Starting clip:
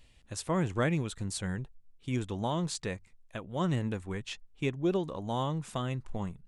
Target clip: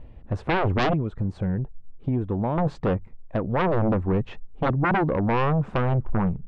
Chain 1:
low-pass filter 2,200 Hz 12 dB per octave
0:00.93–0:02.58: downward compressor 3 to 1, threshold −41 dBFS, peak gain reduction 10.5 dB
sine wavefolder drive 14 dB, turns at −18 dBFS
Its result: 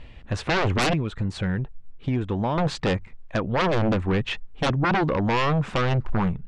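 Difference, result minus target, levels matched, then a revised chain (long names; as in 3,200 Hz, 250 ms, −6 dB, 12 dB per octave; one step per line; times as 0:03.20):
2,000 Hz band +3.0 dB
low-pass filter 800 Hz 12 dB per octave
0:00.93–0:02.58: downward compressor 3 to 1, threshold −41 dBFS, peak gain reduction 10.5 dB
sine wavefolder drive 14 dB, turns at −18 dBFS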